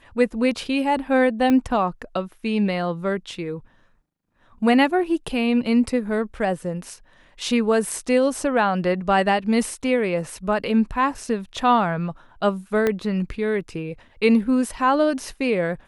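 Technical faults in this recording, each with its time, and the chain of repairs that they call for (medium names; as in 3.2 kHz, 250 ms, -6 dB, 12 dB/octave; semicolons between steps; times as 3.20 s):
1.50 s: pop -10 dBFS
12.87 s: pop -9 dBFS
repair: de-click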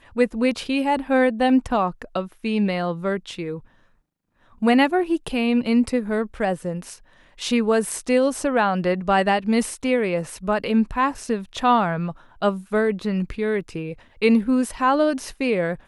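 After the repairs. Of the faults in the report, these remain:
1.50 s: pop
12.87 s: pop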